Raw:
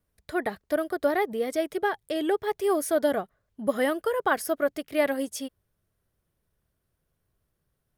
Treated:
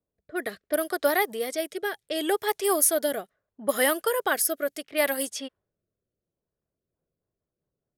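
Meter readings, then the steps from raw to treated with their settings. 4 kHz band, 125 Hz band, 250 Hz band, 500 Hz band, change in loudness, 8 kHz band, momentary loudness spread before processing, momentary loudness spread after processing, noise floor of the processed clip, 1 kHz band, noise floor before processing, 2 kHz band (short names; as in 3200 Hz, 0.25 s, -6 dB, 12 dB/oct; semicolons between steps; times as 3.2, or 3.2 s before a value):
+6.5 dB, n/a, -3.5 dB, -1.0 dB, +1.5 dB, +12.0 dB, 7 LU, 12 LU, under -85 dBFS, 0.0 dB, -78 dBFS, +2.5 dB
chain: low-pass opened by the level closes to 590 Hz, open at -23.5 dBFS; RIAA curve recording; rotary speaker horn 0.7 Hz, later 5 Hz, at 6.38; gain +3.5 dB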